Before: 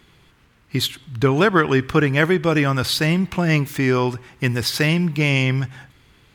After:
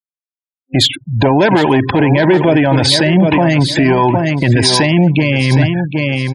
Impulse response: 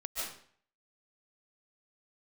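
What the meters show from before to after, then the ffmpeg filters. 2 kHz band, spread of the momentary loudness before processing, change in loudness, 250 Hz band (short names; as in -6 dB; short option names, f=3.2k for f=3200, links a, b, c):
+4.5 dB, 8 LU, +7.5 dB, +9.0 dB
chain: -filter_complex "[0:a]asoftclip=type=tanh:threshold=-16dB,highpass=f=96:w=0.5412,highpass=f=96:w=1.3066,acrossover=split=9900[a][b];[b]acompressor=threshold=-49dB:ratio=4:attack=1:release=60[c];[a][c]amix=inputs=2:normalize=0,afftfilt=real='re*gte(hypot(re,im),0.0282)':imag='im*gte(hypot(re,im),0.0282)':win_size=1024:overlap=0.75,superequalizer=6b=1.78:8b=3.16:9b=2.82:10b=0.316:16b=3.55,aecho=1:1:764|1528:0.282|0.0451,alimiter=level_in=16.5dB:limit=-1dB:release=50:level=0:latency=1,volume=-1dB"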